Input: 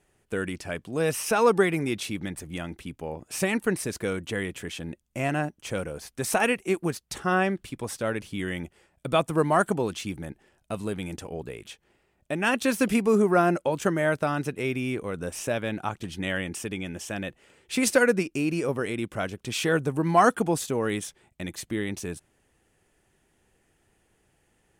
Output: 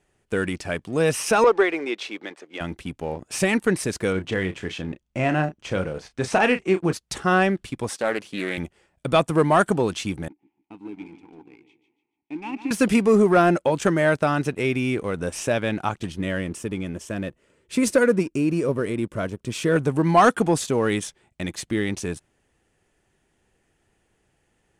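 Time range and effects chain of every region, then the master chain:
1.44–2.61 HPF 350 Hz 24 dB/oct + air absorption 140 m
4.12–6.93 air absorption 94 m + doubler 32 ms -10 dB
7.89–8.58 HPF 240 Hz + Doppler distortion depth 0.17 ms
10.28–12.71 vowel filter u + feedback echo 0.145 s, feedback 35%, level -9.5 dB
16.12–19.76 Butterworth band-stop 780 Hz, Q 4.7 + bell 3300 Hz -8.5 dB 2.9 oct
whole clip: sample leveller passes 1; LPF 9300 Hz 12 dB/oct; gain +1.5 dB

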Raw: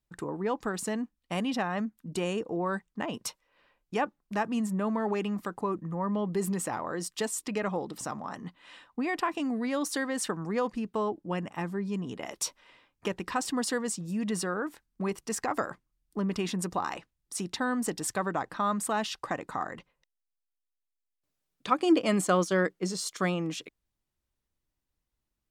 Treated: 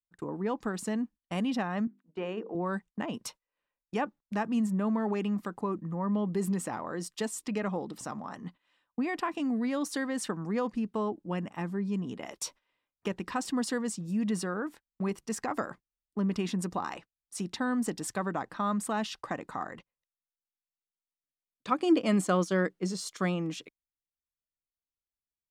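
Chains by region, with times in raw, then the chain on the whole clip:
1.87–2.55 BPF 270–2500 Hz + notches 50/100/150/200/250/300/350/400/450 Hz
whole clip: dynamic EQ 220 Hz, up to +5 dB, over -44 dBFS, Q 1.6; gate -44 dBFS, range -18 dB; high shelf 9100 Hz -4 dB; gain -3 dB

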